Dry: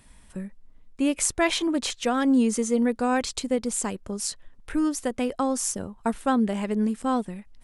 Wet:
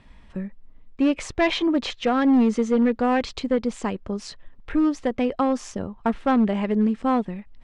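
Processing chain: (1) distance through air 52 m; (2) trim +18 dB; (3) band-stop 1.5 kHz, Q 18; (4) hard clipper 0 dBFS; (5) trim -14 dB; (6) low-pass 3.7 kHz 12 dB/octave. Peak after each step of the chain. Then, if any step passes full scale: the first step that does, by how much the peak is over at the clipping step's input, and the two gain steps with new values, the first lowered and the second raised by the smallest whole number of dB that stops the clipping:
-11.5 dBFS, +6.5 dBFS, +6.5 dBFS, 0.0 dBFS, -14.0 dBFS, -13.5 dBFS; step 2, 6.5 dB; step 2 +11 dB, step 5 -7 dB

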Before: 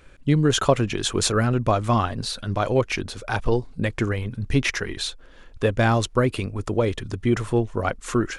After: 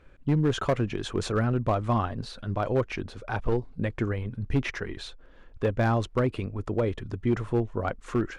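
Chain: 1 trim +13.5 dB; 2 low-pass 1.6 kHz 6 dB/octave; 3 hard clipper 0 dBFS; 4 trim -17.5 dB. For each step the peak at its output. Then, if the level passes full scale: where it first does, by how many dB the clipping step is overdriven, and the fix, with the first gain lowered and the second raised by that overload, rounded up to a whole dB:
+9.0 dBFS, +8.0 dBFS, 0.0 dBFS, -17.5 dBFS; step 1, 8.0 dB; step 1 +5.5 dB, step 4 -9.5 dB

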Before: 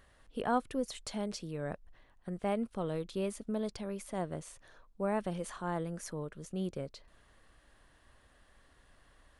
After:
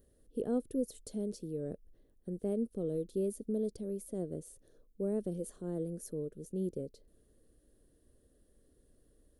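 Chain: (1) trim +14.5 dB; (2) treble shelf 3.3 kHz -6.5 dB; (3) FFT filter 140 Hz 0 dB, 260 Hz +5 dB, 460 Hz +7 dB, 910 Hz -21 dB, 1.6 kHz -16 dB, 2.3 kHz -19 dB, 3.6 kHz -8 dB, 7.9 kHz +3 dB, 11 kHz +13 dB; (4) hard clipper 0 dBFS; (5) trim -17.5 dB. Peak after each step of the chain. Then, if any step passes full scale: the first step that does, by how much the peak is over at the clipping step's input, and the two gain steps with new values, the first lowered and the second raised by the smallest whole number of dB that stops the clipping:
-4.0 dBFS, -4.0 dBFS, -5.0 dBFS, -5.0 dBFS, -22.5 dBFS; nothing clips

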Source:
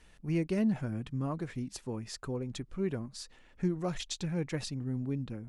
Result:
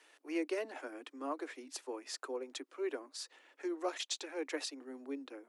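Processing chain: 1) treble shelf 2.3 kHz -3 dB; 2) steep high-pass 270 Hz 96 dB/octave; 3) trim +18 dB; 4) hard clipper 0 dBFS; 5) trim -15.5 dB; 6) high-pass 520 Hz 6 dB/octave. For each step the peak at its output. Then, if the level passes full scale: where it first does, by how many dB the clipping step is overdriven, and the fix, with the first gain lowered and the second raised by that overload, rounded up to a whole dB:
-20.0 dBFS, -23.5 dBFS, -5.5 dBFS, -5.5 dBFS, -21.0 dBFS, -23.5 dBFS; nothing clips

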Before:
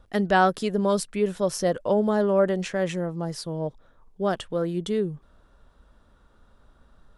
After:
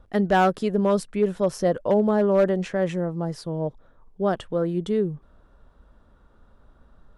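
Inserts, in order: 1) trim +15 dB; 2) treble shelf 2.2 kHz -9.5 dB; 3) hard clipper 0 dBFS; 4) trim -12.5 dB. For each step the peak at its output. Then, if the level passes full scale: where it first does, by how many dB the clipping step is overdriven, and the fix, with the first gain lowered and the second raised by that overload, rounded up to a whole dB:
+7.5 dBFS, +5.5 dBFS, 0.0 dBFS, -12.5 dBFS; step 1, 5.5 dB; step 1 +9 dB, step 4 -6.5 dB

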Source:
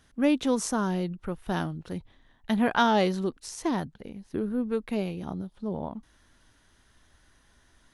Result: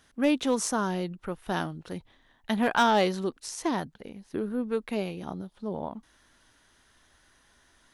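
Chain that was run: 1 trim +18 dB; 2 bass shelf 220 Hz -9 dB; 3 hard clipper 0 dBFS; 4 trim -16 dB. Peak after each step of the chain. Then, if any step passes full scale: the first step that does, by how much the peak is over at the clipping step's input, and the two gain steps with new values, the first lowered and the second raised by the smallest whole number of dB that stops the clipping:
+7.5 dBFS, +6.5 dBFS, 0.0 dBFS, -16.0 dBFS; step 1, 6.5 dB; step 1 +11 dB, step 4 -9 dB

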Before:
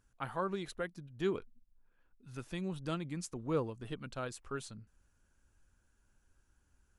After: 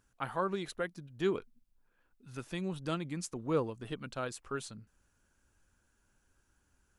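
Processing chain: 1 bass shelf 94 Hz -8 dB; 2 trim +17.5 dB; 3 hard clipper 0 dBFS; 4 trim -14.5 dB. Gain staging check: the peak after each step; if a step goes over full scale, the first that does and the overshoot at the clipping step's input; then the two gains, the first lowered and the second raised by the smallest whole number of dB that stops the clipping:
-22.5 dBFS, -5.0 dBFS, -5.0 dBFS, -19.5 dBFS; nothing clips

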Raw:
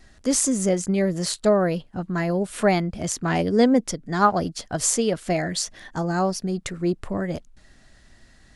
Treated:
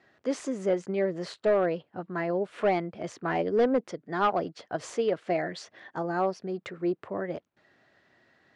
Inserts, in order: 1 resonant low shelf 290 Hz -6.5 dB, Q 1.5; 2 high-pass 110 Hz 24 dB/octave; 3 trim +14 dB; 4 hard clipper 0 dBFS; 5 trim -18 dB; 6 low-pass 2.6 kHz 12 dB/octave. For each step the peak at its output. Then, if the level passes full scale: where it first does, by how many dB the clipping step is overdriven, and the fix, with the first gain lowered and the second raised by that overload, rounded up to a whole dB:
-4.0 dBFS, -4.0 dBFS, +10.0 dBFS, 0.0 dBFS, -18.0 dBFS, -17.5 dBFS; step 3, 10.0 dB; step 3 +4 dB, step 5 -8 dB

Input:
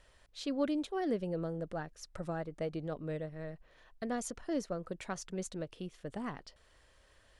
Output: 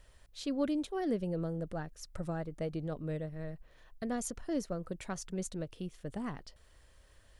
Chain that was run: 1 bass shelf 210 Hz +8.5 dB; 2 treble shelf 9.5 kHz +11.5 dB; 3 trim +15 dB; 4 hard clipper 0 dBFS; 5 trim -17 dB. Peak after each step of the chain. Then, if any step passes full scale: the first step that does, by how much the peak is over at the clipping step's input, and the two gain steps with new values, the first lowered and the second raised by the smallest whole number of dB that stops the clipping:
-20.0 dBFS, -20.0 dBFS, -5.0 dBFS, -5.0 dBFS, -22.0 dBFS; nothing clips

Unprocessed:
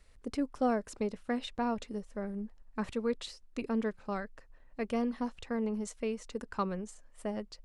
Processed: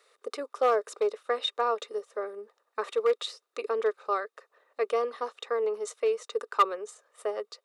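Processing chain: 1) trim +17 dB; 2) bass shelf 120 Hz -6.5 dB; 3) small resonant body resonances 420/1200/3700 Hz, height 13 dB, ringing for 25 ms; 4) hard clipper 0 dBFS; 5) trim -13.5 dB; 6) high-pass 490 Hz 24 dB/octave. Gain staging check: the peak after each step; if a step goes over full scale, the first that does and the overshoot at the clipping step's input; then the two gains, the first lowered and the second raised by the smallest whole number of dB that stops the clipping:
-2.5 dBFS, -3.0 dBFS, +6.5 dBFS, 0.0 dBFS, -13.5 dBFS, -10.5 dBFS; step 3, 6.5 dB; step 1 +10 dB, step 5 -6.5 dB

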